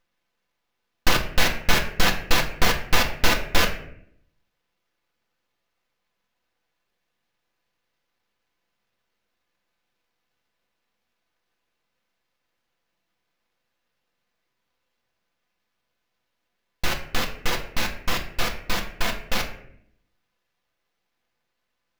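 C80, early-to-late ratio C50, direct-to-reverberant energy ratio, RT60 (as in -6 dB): 12.5 dB, 10.0 dB, 0.5 dB, 0.65 s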